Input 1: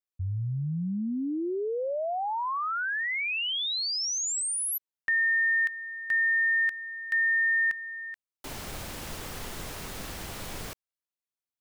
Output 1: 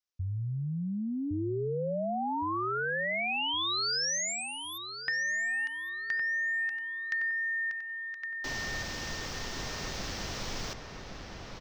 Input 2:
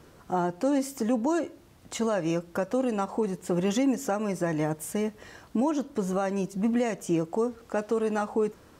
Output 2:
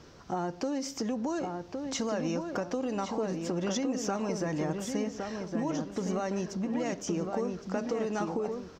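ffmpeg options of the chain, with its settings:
-filter_complex "[0:a]highshelf=f=7.6k:t=q:w=3:g=-11.5,acompressor=threshold=-33dB:ratio=6:attack=58:release=49:knee=6:detection=rms,asplit=2[a][b];[b]adelay=1113,lowpass=f=2.4k:p=1,volume=-4.5dB,asplit=2[c][d];[d]adelay=1113,lowpass=f=2.4k:p=1,volume=0.36,asplit=2[e][f];[f]adelay=1113,lowpass=f=2.4k:p=1,volume=0.36,asplit=2[g][h];[h]adelay=1113,lowpass=f=2.4k:p=1,volume=0.36,asplit=2[i][j];[j]adelay=1113,lowpass=f=2.4k:p=1,volume=0.36[k];[a][c][e][g][i][k]amix=inputs=6:normalize=0"

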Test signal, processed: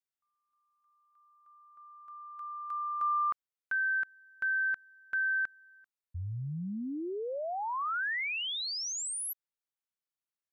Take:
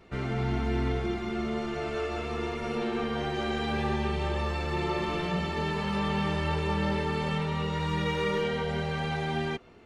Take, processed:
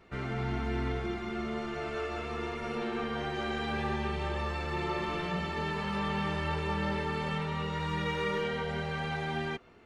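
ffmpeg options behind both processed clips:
-af "equalizer=f=1.5k:t=o:w=1.5:g=4,volume=-4.5dB"

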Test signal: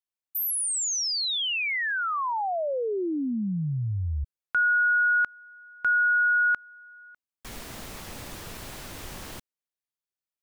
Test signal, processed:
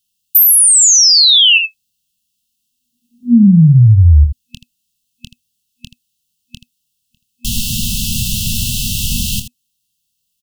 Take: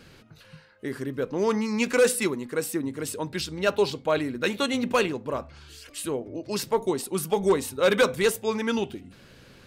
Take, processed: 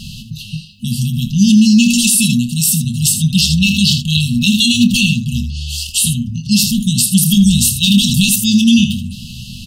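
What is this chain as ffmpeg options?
-af "aecho=1:1:25|80:0.316|0.266,afftfilt=real='re*(1-between(b*sr/4096,240,2600))':imag='im*(1-between(b*sr/4096,240,2600))':win_size=4096:overlap=0.75,alimiter=level_in=24.5dB:limit=-1dB:release=50:level=0:latency=1,volume=-1dB"

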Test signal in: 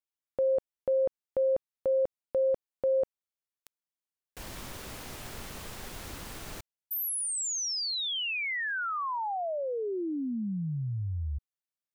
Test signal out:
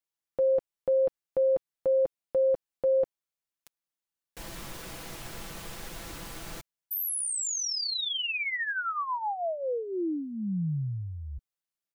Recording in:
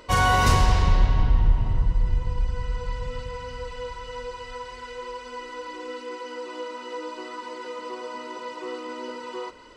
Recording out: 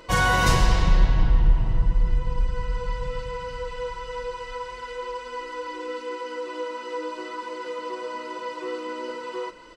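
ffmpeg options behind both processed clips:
-af "aecho=1:1:6:0.49"

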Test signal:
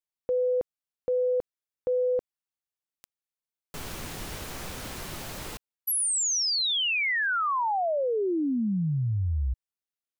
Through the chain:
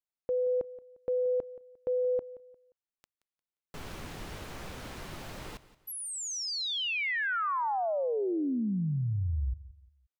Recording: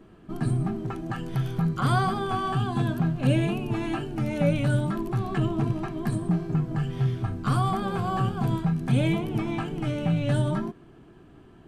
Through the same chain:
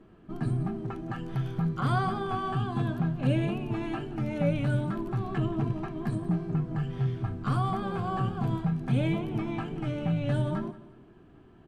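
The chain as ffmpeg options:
-af "highshelf=f=5.6k:g=-11,aecho=1:1:176|352|528:0.133|0.044|0.0145,volume=-3.5dB"

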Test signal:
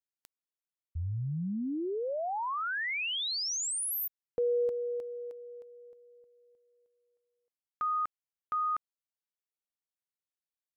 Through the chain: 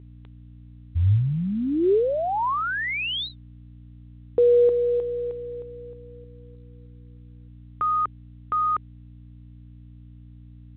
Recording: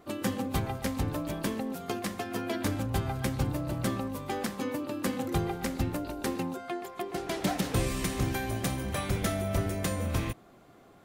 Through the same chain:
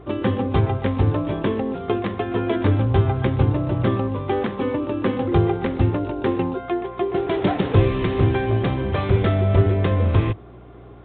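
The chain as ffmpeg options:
-af "aeval=exprs='val(0)+0.00224*(sin(2*PI*60*n/s)+sin(2*PI*2*60*n/s)/2+sin(2*PI*3*60*n/s)/3+sin(2*PI*4*60*n/s)/4+sin(2*PI*5*60*n/s)/5)':c=same,equalizer=f=100:t=o:w=0.67:g=11,equalizer=f=400:t=o:w=0.67:g=10,equalizer=f=1k:t=o:w=0.67:g=4,volume=5.5dB" -ar 8000 -c:a pcm_mulaw

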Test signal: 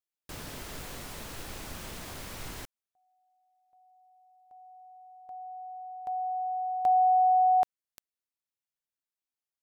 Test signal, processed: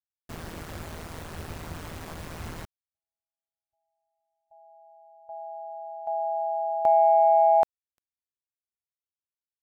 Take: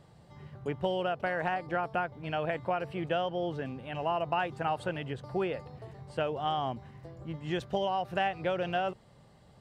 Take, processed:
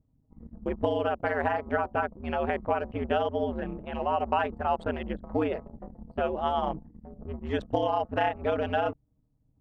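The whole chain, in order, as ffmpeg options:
-filter_complex "[0:a]anlmdn=0.1,acrossover=split=2000[a][b];[a]acontrast=76[c];[c][b]amix=inputs=2:normalize=0,aeval=exprs='val(0)*sin(2*PI*81*n/s)':c=same"

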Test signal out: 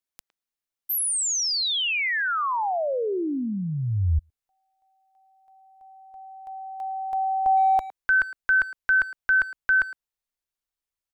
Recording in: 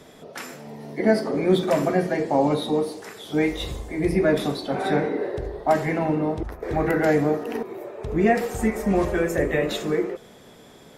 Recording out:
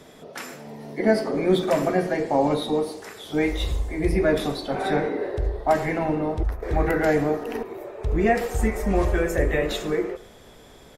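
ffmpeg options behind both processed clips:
-filter_complex "[0:a]asubboost=boost=5.5:cutoff=67,asplit=2[a][b];[b]adelay=110,highpass=300,lowpass=3.4k,asoftclip=type=hard:threshold=-17.5dB,volume=-16dB[c];[a][c]amix=inputs=2:normalize=0"

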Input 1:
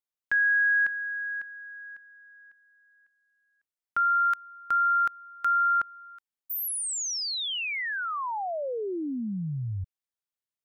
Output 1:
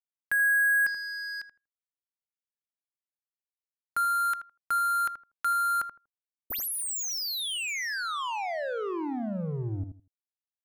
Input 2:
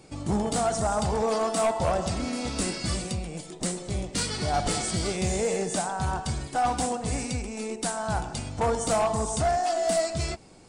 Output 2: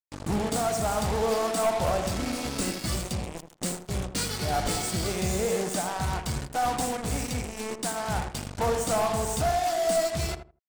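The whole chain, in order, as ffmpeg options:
-filter_complex "[0:a]acrusher=bits=4:mix=0:aa=0.5,asplit=2[a][b];[b]adelay=80,lowpass=f=1.1k:p=1,volume=-7.5dB,asplit=2[c][d];[d]adelay=80,lowpass=f=1.1k:p=1,volume=0.21,asplit=2[e][f];[f]adelay=80,lowpass=f=1.1k:p=1,volume=0.21[g];[a][c][e][g]amix=inputs=4:normalize=0,volume=-1.5dB"

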